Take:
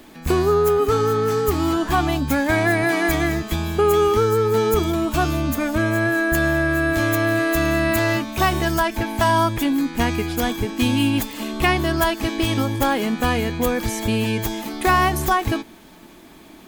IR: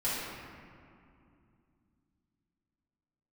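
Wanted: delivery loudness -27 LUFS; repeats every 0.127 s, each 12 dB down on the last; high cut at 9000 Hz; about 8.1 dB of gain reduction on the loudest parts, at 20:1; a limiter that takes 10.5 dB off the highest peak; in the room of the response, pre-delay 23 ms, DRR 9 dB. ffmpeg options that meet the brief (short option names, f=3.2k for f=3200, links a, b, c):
-filter_complex "[0:a]lowpass=9k,acompressor=threshold=-21dB:ratio=20,alimiter=limit=-22.5dB:level=0:latency=1,aecho=1:1:127|254|381:0.251|0.0628|0.0157,asplit=2[a][b];[1:a]atrim=start_sample=2205,adelay=23[c];[b][c]afir=irnorm=-1:irlink=0,volume=-17dB[d];[a][d]amix=inputs=2:normalize=0,volume=2.5dB"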